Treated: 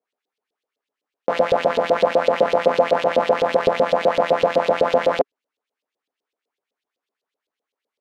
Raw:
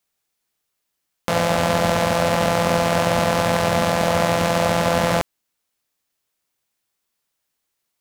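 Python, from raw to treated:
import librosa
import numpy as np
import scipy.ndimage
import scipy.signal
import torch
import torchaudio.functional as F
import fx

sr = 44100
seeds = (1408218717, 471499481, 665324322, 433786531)

y = fx.small_body(x, sr, hz=(270.0, 410.0), ring_ms=30, db=15)
y = fx.filter_lfo_bandpass(y, sr, shape='saw_up', hz=7.9, low_hz=440.0, high_hz=4000.0, q=2.8)
y = F.gain(torch.from_numpy(y), 2.5).numpy()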